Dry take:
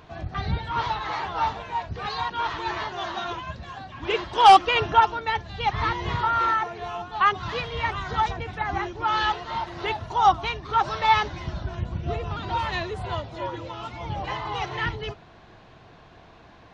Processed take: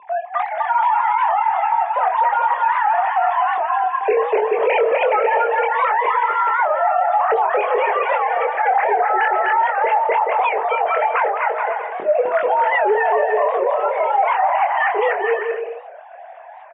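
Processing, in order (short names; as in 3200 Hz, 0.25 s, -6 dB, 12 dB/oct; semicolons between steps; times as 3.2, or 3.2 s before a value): sine-wave speech; low shelf 380 Hz +5.5 dB; notches 50/100/150/200/250/300/350/400/450/500 Hz; negative-ratio compressor -30 dBFS, ratio -1; speaker cabinet 200–2200 Hz, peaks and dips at 230 Hz -4 dB, 440 Hz +5 dB, 630 Hz +7 dB, 1300 Hz -5 dB; doubler 24 ms -5 dB; bouncing-ball echo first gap 0.25 s, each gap 0.7×, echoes 5; maximiser +20 dB; record warp 78 rpm, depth 160 cents; gain -8 dB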